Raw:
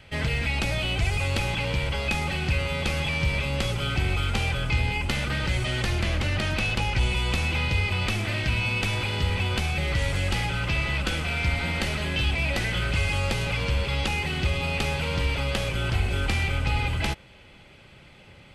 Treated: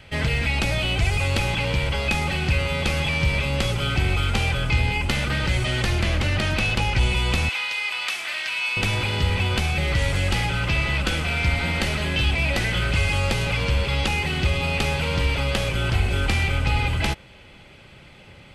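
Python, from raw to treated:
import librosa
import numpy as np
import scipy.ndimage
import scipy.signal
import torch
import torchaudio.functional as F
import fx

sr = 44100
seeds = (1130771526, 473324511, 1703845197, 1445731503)

y = fx.highpass(x, sr, hz=1100.0, slope=12, at=(7.49, 8.77))
y = y * 10.0 ** (3.5 / 20.0)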